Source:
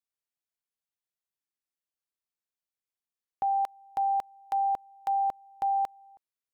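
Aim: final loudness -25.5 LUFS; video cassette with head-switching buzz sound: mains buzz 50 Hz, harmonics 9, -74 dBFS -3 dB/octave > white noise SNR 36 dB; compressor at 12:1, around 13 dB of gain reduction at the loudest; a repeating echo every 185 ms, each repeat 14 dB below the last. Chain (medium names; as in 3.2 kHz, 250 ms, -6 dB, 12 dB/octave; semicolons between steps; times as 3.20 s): compression 12:1, threshold -38 dBFS; feedback delay 185 ms, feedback 20%, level -14 dB; mains buzz 50 Hz, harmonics 9, -74 dBFS -3 dB/octave; white noise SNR 36 dB; trim +17 dB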